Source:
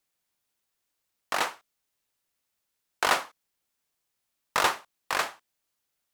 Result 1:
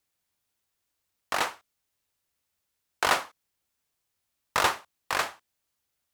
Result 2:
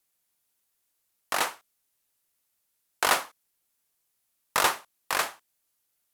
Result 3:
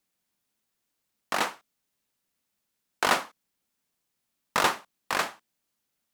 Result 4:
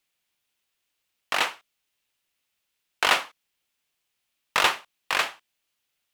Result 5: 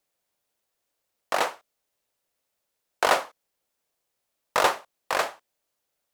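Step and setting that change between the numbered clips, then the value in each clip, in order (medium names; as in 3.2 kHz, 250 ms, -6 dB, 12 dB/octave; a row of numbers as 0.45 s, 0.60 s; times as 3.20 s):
peaking EQ, frequency: 78 Hz, 12 kHz, 210 Hz, 2.8 kHz, 560 Hz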